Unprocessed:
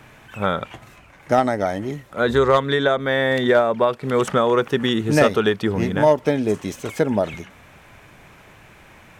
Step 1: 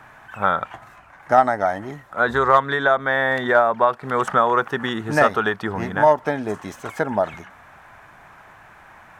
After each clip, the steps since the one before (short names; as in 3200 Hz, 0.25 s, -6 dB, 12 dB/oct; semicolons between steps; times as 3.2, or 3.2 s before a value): band shelf 1100 Hz +11 dB; gain -6 dB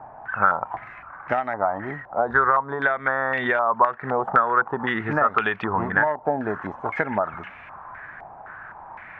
compressor 6:1, threshold -22 dBFS, peak gain reduction 13 dB; stepped low-pass 3.9 Hz 780–2500 Hz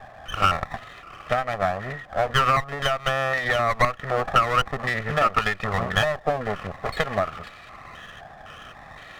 minimum comb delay 1.6 ms